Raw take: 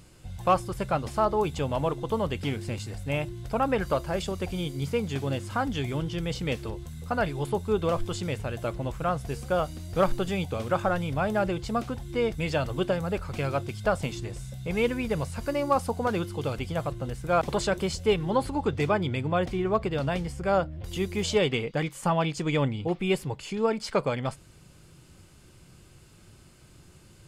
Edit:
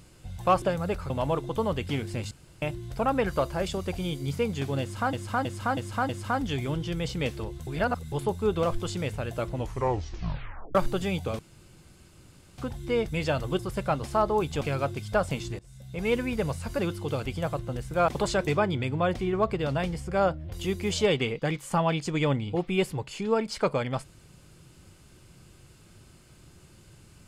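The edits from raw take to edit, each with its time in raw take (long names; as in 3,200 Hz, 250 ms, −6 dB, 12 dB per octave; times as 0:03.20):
0:00.62–0:01.64: swap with 0:12.85–0:13.33
0:02.85–0:03.16: fill with room tone
0:05.35–0:05.67: repeat, 5 plays
0:06.93–0:07.38: reverse
0:08.80: tape stop 1.21 s
0:10.65–0:11.84: fill with room tone
0:14.31–0:14.88: fade in, from −22 dB
0:15.51–0:16.12: remove
0:17.80–0:18.79: remove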